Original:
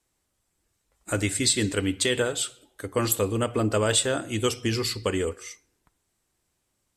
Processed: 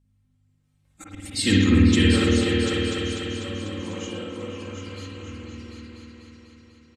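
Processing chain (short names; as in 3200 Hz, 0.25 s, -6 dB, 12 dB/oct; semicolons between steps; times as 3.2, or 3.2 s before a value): trilling pitch shifter -2 st, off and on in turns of 0.337 s; Doppler pass-by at 1.45, 25 m/s, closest 1.4 m; HPF 48 Hz 12 dB/oct; low shelf 230 Hz +11.5 dB; harmonic-percussive split harmonic +6 dB; bell 3000 Hz +7.5 dB 2.5 oct; auto swell 0.559 s; comb 3.8 ms, depth 81%; hum 50 Hz, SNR 33 dB; repeats that get brighter 0.247 s, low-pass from 750 Hz, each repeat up 2 oct, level 0 dB; spring tank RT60 1.1 s, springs 51 ms, chirp 30 ms, DRR -2 dB; gain +6 dB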